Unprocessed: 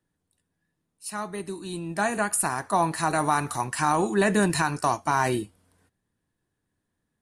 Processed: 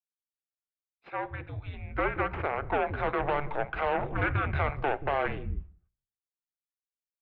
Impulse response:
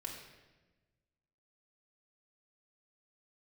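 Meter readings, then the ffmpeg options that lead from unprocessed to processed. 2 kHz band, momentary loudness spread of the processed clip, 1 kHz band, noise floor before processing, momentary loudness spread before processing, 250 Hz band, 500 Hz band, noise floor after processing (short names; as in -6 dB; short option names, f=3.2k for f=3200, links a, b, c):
-3.5 dB, 10 LU, -6.0 dB, -80 dBFS, 12 LU, -10.5 dB, -3.5 dB, under -85 dBFS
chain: -filter_complex "[0:a]aeval=exprs='0.335*(cos(1*acos(clip(val(0)/0.335,-1,1)))-cos(1*PI/2))+0.0422*(cos(3*acos(clip(val(0)/0.335,-1,1)))-cos(3*PI/2))+0.0299*(cos(5*acos(clip(val(0)/0.335,-1,1)))-cos(5*PI/2))+0.075*(cos(6*acos(clip(val(0)/0.335,-1,1)))-cos(6*PI/2))':c=same,agate=range=-33dB:threshold=-49dB:ratio=3:detection=peak,asplit=2[a][b];[b]acompressor=threshold=-26dB:ratio=6,volume=1dB[c];[a][c]amix=inputs=2:normalize=0,bandreject=f=60:t=h:w=6,bandreject=f=120:t=h:w=6,bandreject=f=180:t=h:w=6,bandreject=f=240:t=h:w=6,bandreject=f=300:t=h:w=6,bandreject=f=360:t=h:w=6,acrossover=split=480[d][e];[d]adelay=180[f];[f][e]amix=inputs=2:normalize=0,asplit=2[g][h];[1:a]atrim=start_sample=2205,afade=t=out:st=0.31:d=0.01,atrim=end_sample=14112[i];[h][i]afir=irnorm=-1:irlink=0,volume=-16dB[j];[g][j]amix=inputs=2:normalize=0,highpass=f=210:t=q:w=0.5412,highpass=f=210:t=q:w=1.307,lowpass=f=2.9k:t=q:w=0.5176,lowpass=f=2.9k:t=q:w=0.7071,lowpass=f=2.9k:t=q:w=1.932,afreqshift=-290,volume=-7.5dB"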